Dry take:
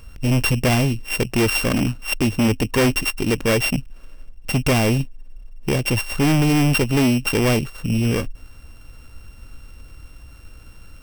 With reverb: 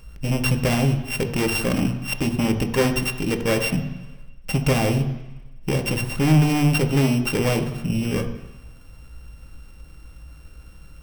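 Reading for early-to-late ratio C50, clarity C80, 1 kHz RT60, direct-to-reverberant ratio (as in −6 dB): 9.0 dB, 11.0 dB, 1.1 s, 5.0 dB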